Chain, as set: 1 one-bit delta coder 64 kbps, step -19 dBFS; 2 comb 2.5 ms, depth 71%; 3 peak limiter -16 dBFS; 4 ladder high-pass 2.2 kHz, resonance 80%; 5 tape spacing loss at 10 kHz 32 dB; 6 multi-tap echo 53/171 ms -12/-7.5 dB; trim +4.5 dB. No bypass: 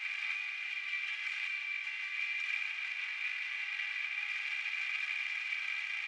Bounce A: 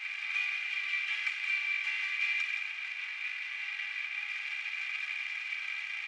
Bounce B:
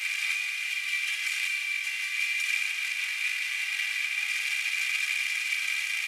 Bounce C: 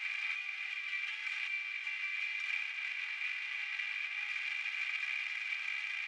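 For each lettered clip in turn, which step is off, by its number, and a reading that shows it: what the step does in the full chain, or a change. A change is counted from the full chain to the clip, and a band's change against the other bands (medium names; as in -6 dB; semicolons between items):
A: 3, mean gain reduction 1.5 dB; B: 5, loudness change +8.0 LU; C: 6, echo-to-direct -6.0 dB to none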